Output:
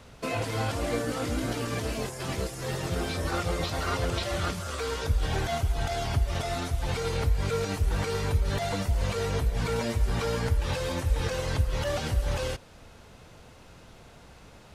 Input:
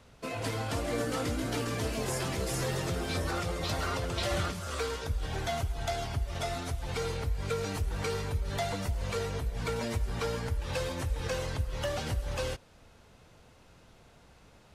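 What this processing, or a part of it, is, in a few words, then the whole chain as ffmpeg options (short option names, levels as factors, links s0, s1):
de-esser from a sidechain: -filter_complex "[0:a]asplit=2[s0][s1];[s1]highpass=f=6200:w=0.5412,highpass=f=6200:w=1.3066,apad=whole_len=650258[s2];[s0][s2]sidechaincompress=threshold=0.00316:ratio=10:attack=2.6:release=55,volume=2.24"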